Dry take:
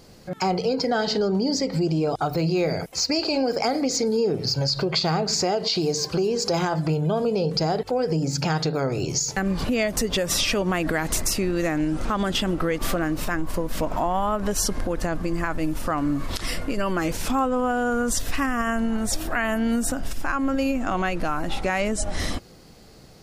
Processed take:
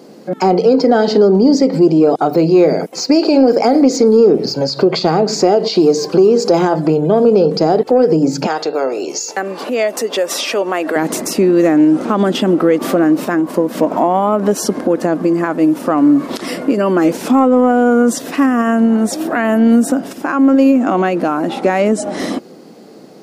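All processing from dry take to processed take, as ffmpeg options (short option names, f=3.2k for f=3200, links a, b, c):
-filter_complex "[0:a]asettb=1/sr,asplit=3[a][b][c];[a]atrim=end=8.464[d];[b]atrim=start=8.46:end=10.96,asetpts=PTS-STARTPTS,afade=t=in:d=0.004:c=qsin,afade=t=out:st=2.496:d=0.004:c=qsin,highpass=530,aeval=exprs='val(0)+0.00251*sin(2*PI*2700*n/s)':c=same[e];[c]atrim=start=10.956[f];[d][e]acrossfade=d=0.004:c1=hsin:c2=qsin[g];[g][f]acrossfade=d=0.004:c1=qsin:c2=hsin,highpass=f=230:w=0.5412,highpass=f=230:w=1.3066,tiltshelf=f=820:g=8,acontrast=39,volume=4.5dB"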